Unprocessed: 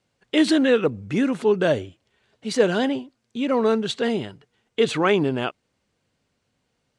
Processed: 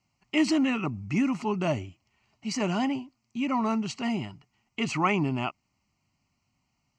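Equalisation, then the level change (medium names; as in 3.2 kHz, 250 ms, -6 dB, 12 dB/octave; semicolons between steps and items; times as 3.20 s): dynamic bell 3.8 kHz, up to -6 dB, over -45 dBFS, Q 3.5; static phaser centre 2.4 kHz, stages 8; 0.0 dB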